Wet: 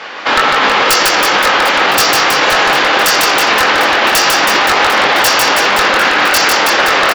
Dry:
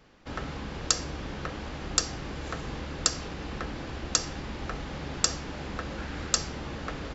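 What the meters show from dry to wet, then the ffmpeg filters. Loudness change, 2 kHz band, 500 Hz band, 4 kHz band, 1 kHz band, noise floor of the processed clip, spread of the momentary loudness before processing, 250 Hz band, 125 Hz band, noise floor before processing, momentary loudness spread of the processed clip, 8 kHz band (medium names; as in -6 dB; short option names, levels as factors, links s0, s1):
+23.0 dB, +31.0 dB, +24.5 dB, +23.0 dB, +29.5 dB, -12 dBFS, 9 LU, +15.0 dB, +3.5 dB, -39 dBFS, 1 LU, no reading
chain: -af "dynaudnorm=f=330:g=9:m=2.24,highpass=780,lowpass=3900,asoftclip=type=tanh:threshold=0.133,flanger=delay=20:depth=3:speed=2.1,aeval=exprs='0.0178*(abs(mod(val(0)/0.0178+3,4)-2)-1)':c=same,aecho=1:1:150|322.5|520.9|749|1011:0.631|0.398|0.251|0.158|0.1,acontrast=88,alimiter=level_in=53.1:limit=0.891:release=50:level=0:latency=1,volume=0.891"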